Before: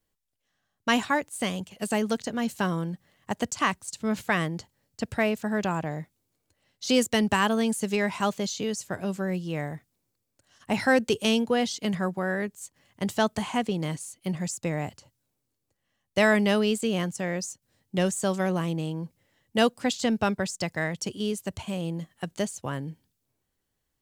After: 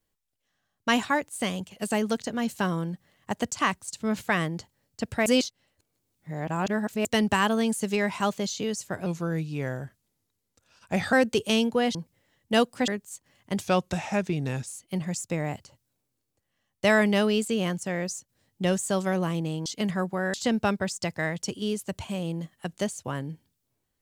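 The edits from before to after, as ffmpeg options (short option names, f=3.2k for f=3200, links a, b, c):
-filter_complex "[0:a]asplit=11[a][b][c][d][e][f][g][h][i][j][k];[a]atrim=end=5.262[l];[b]atrim=start=5.258:end=7.052,asetpts=PTS-STARTPTS,areverse[m];[c]atrim=start=7.048:end=9.064[n];[d]atrim=start=9.06:end=10.88,asetpts=PTS-STARTPTS,asetrate=38808,aresample=44100[o];[e]atrim=start=10.876:end=11.702[p];[f]atrim=start=18.988:end=19.922[q];[g]atrim=start=12.378:end=13.114[r];[h]atrim=start=13.11:end=14,asetpts=PTS-STARTPTS,asetrate=37044,aresample=44100[s];[i]atrim=start=13.996:end=18.992[t];[j]atrim=start=11.698:end=12.382[u];[k]atrim=start=19.918[v];[l][m]acrossfade=d=0.004:c1=hsin:c2=hsin[w];[w][n]acrossfade=d=0.004:c1=hsin:c2=hsin[x];[x][o]acrossfade=d=0.004:c1=hsin:c2=hsin[y];[y][p]acrossfade=d=0.004:c1=hsin:c2=hsin[z];[z][q]acrossfade=d=0.004:c1=hsin:c2=hsin[aa];[aa][r]acrossfade=d=0.004:c1=hsin:c2=hsin[ab];[ab][s]acrossfade=d=0.004:c1=hsin:c2=hsin[ac];[ac][t]acrossfade=d=0.004:c1=hsin:c2=hsin[ad];[ad][u]acrossfade=d=0.004:c1=hsin:c2=hsin[ae];[ae][v]acrossfade=d=0.004:c1=hsin:c2=hsin"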